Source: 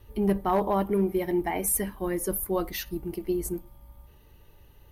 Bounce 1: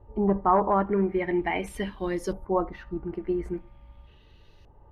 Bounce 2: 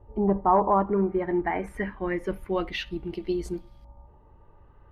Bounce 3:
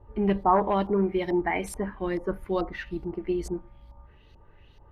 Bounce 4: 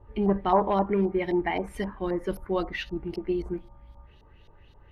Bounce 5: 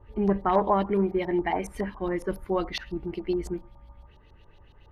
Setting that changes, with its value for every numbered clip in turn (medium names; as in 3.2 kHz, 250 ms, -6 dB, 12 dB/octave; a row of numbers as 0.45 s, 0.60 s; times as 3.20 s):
LFO low-pass, rate: 0.43 Hz, 0.26 Hz, 2.3 Hz, 3.8 Hz, 7.2 Hz